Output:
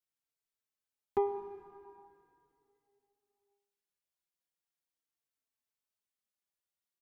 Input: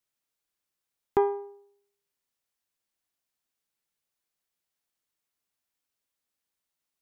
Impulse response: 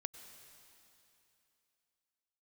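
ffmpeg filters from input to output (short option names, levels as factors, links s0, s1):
-filter_complex "[1:a]atrim=start_sample=2205[s0];[0:a][s0]afir=irnorm=-1:irlink=0,asplit=2[s1][s2];[s2]adelay=3.9,afreqshift=-0.4[s3];[s1][s3]amix=inputs=2:normalize=1,volume=0.708"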